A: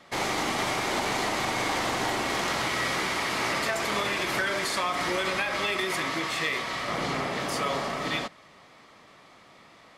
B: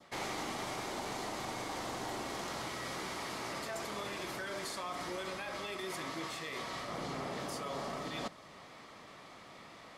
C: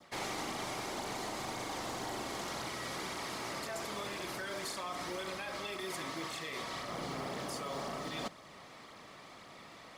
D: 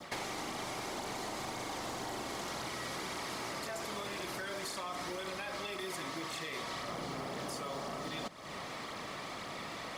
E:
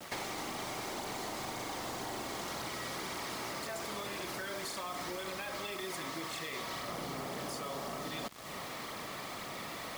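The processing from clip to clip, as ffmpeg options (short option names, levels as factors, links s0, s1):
-af "areverse,acompressor=threshold=0.0158:ratio=10,areverse,adynamicequalizer=threshold=0.00158:dfrequency=2200:dqfactor=0.91:tfrequency=2200:tqfactor=0.91:attack=5:release=100:ratio=0.375:range=3:mode=cutabove:tftype=bell,volume=1.12"
-filter_complex "[0:a]acrossover=split=460|2300[s0][s1][s2];[s0]acrusher=samples=9:mix=1:aa=0.000001[s3];[s2]aphaser=in_gain=1:out_gain=1:delay=2.3:decay=0.55:speed=1.9:type=triangular[s4];[s3][s1][s4]amix=inputs=3:normalize=0"
-af "acompressor=threshold=0.00355:ratio=6,volume=3.55"
-af "acrusher=bits=7:mix=0:aa=0.000001"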